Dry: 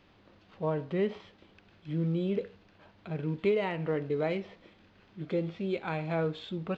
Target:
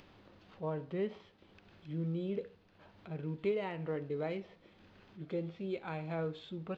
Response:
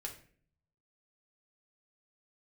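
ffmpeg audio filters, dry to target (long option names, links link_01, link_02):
-filter_complex "[0:a]acompressor=mode=upward:threshold=-44dB:ratio=2.5,asplit=2[link_01][link_02];[1:a]atrim=start_sample=2205,lowpass=frequency=2500:width=0.5412,lowpass=frequency=2500:width=1.3066[link_03];[link_02][link_03]afir=irnorm=-1:irlink=0,volume=-13.5dB[link_04];[link_01][link_04]amix=inputs=2:normalize=0,volume=-7.5dB"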